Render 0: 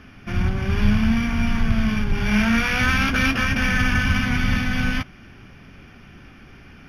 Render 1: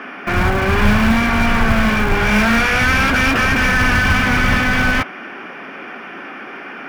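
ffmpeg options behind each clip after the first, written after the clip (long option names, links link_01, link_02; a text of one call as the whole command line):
ffmpeg -i in.wav -filter_complex "[0:a]acrossover=split=220|3000[link_01][link_02][link_03];[link_01]acrusher=bits=4:mix=0:aa=0.000001[link_04];[link_02]asplit=2[link_05][link_06];[link_06]highpass=frequency=720:poles=1,volume=27dB,asoftclip=type=tanh:threshold=-10.5dB[link_07];[link_05][link_07]amix=inputs=2:normalize=0,lowpass=frequency=1500:poles=1,volume=-6dB[link_08];[link_04][link_08][link_03]amix=inputs=3:normalize=0,volume=3dB" out.wav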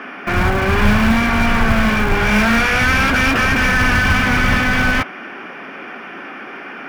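ffmpeg -i in.wav -af anull out.wav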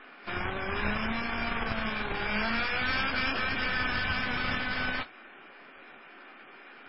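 ffmpeg -i in.wav -af "bass=frequency=250:gain=-7,treble=frequency=4000:gain=9,aeval=exprs='0.668*(cos(1*acos(clip(val(0)/0.668,-1,1)))-cos(1*PI/2))+0.168*(cos(3*acos(clip(val(0)/0.668,-1,1)))-cos(3*PI/2))+0.0211*(cos(8*acos(clip(val(0)/0.668,-1,1)))-cos(8*PI/2))':channel_layout=same,volume=-6.5dB" -ar 12000 -c:a libmp3lame -b:a 16k out.mp3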